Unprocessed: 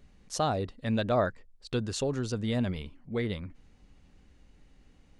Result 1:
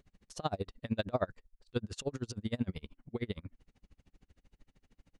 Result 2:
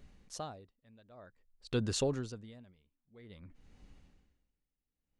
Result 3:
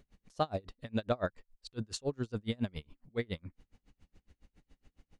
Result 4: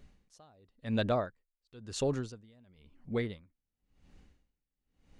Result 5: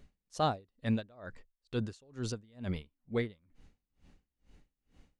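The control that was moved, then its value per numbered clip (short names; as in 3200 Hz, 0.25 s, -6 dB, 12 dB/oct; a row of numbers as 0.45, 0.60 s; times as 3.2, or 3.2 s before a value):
dB-linear tremolo, rate: 13, 0.52, 7.2, 0.96, 2.2 Hz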